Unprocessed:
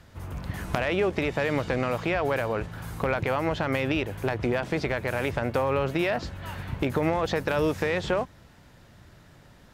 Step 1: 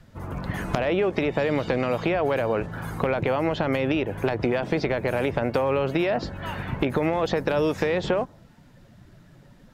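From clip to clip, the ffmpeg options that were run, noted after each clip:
-filter_complex "[0:a]equalizer=f=68:w=1:g=-10,afftdn=nr=12:nf=-48,acrossover=split=840|2800[s0][s1][s2];[s0]acompressor=threshold=0.0355:ratio=4[s3];[s1]acompressor=threshold=0.00708:ratio=4[s4];[s2]acompressor=threshold=0.00501:ratio=4[s5];[s3][s4][s5]amix=inputs=3:normalize=0,volume=2.51"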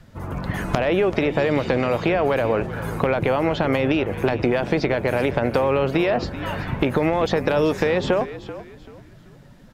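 -filter_complex "[0:a]asplit=4[s0][s1][s2][s3];[s1]adelay=385,afreqshift=-55,volume=0.2[s4];[s2]adelay=770,afreqshift=-110,volume=0.0638[s5];[s3]adelay=1155,afreqshift=-165,volume=0.0204[s6];[s0][s4][s5][s6]amix=inputs=4:normalize=0,volume=1.5"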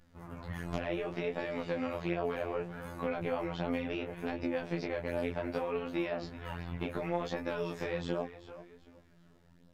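-af "afftfilt=real='hypot(re,im)*cos(PI*b)':imag='0':win_size=2048:overlap=0.75,flanger=delay=15:depth=8:speed=0.67,volume=0.376"

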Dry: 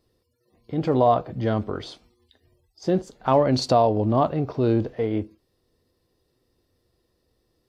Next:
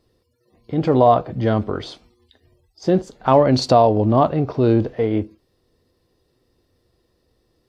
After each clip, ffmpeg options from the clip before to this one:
-af "highshelf=f=7900:g=-5.5,volume=1.78"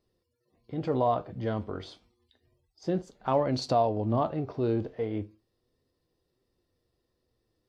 -af "flanger=delay=4.9:depth=6.6:regen=76:speed=0.31:shape=triangular,volume=0.422"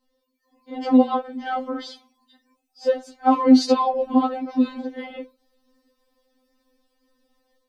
-af "dynaudnorm=f=260:g=3:m=2,afftfilt=real='re*3.46*eq(mod(b,12),0)':imag='im*3.46*eq(mod(b,12),0)':win_size=2048:overlap=0.75,volume=2.11"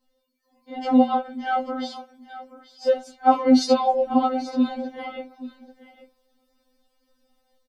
-filter_complex "[0:a]asplit=2[s0][s1];[s1]adelay=13,volume=0.631[s2];[s0][s2]amix=inputs=2:normalize=0,aecho=1:1:833:0.168,volume=0.891"

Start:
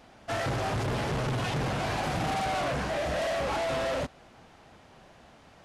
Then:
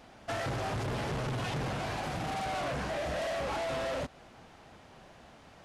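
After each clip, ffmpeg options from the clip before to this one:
-af "acompressor=threshold=0.0224:ratio=6"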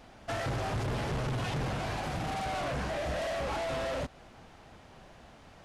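-af "lowshelf=f=70:g=8"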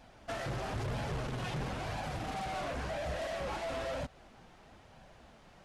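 -af "flanger=delay=1.2:depth=4.5:regen=-45:speed=1:shape=sinusoidal"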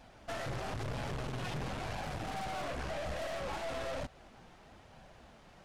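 -af "aeval=exprs='(tanh(79.4*val(0)+0.55)-tanh(0.55))/79.4':c=same,volume=1.41"

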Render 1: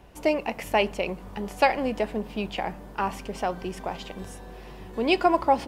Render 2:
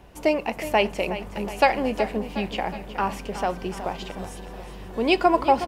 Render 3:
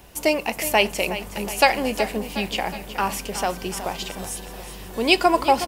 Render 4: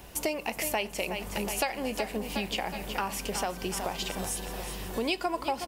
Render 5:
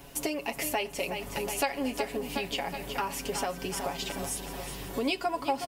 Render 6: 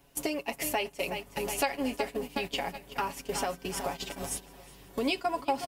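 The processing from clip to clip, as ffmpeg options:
-af "aecho=1:1:367|734|1101|1468|1835|2202:0.237|0.133|0.0744|0.0416|0.0233|0.0131,volume=1.26"
-af "crystalizer=i=4:c=0"
-af "acompressor=threshold=0.0355:ratio=4"
-af "equalizer=f=250:t=o:w=1:g=3,aecho=1:1:7.2:0.7,volume=0.75"
-af "agate=range=0.224:threshold=0.02:ratio=16:detection=peak"

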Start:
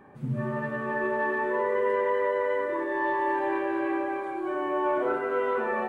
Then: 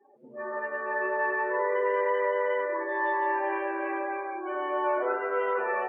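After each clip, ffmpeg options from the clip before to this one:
-af "afftdn=nr=30:nf=-45,highpass=f=400:w=0.5412,highpass=f=400:w=1.3066,adynamicequalizer=threshold=0.01:dfrequency=2000:dqfactor=0.7:tfrequency=2000:tqfactor=0.7:attack=5:release=100:ratio=0.375:range=1.5:mode=boostabove:tftype=highshelf"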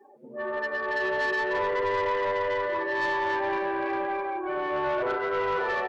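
-filter_complex "[0:a]areverse,acompressor=mode=upward:threshold=0.00447:ratio=2.5,areverse,asplit=2[s0][s1];[s1]adelay=13,volume=0.282[s2];[s0][s2]amix=inputs=2:normalize=0,asoftclip=type=tanh:threshold=0.0501,volume=1.58"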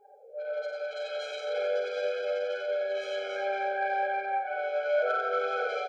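-filter_complex "[0:a]asplit=2[s0][s1];[s1]aecho=0:1:51|92:0.562|0.631[s2];[s0][s2]amix=inputs=2:normalize=0,afftfilt=real='re*eq(mod(floor(b*sr/1024/430),2),1)':imag='im*eq(mod(floor(b*sr/1024/430),2),1)':win_size=1024:overlap=0.75"

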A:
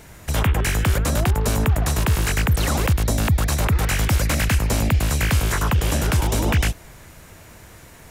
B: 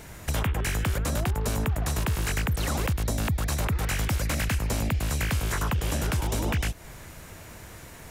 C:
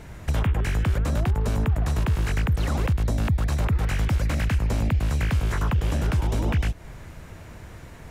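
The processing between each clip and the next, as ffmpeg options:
-af "acompressor=threshold=0.0501:ratio=3"
-af "lowpass=f=3100:p=1,lowshelf=f=210:g=5.5"

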